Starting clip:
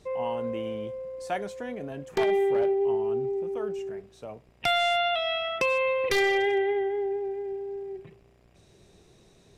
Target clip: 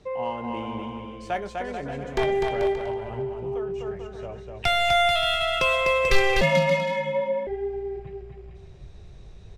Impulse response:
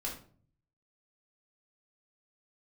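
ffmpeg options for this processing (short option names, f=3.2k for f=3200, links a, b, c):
-filter_complex "[0:a]asplit=2[a][b];[b]aecho=0:1:250|437.5|578.1|683.6|762.7:0.631|0.398|0.251|0.158|0.1[c];[a][c]amix=inputs=2:normalize=0,asettb=1/sr,asplit=3[d][e][f];[d]atrim=end=2.754[g];[e]atrim=start=2.75:end=3.78,asetpts=PTS-STARTPTS,afade=t=in:d=0.004:c=qsin,afade=t=out:st=1.026:d=0.004:c=qsin,acompressor=threshold=-26dB:ratio=6[h];[f]atrim=start=3.776[i];[g][h]acrossfade=d=0.004:c1=hsin:c2=qsin[j];[j][i]acrossfade=d=0.004:c1=qsin:c2=hsin,asubboost=boost=8.5:cutoff=86,acrossover=split=170[k][l];[l]adynamicsmooth=sensitivity=7.5:basefreq=5.4k[m];[k][m]amix=inputs=2:normalize=0,asettb=1/sr,asplit=3[n][o][p];[n]atrim=end=6.414[q];[o]atrim=start=6.41:end=7.47,asetpts=PTS-STARTPTS,afade=t=in:d=0.004:c=qsin,afade=t=out:st=1.056:d=0.004:c=qsin,afreqshift=150[r];[p]atrim=start=7.466[s];[q][r]acrossfade=d=0.004:c1=hsin:c2=qsin[t];[t][s]acrossfade=d=0.004:c1=qsin:c2=hsin,asplit=2[u][v];[v]adelay=22,volume=-14dB[w];[u][w]amix=inputs=2:normalize=0,volume=2.5dB"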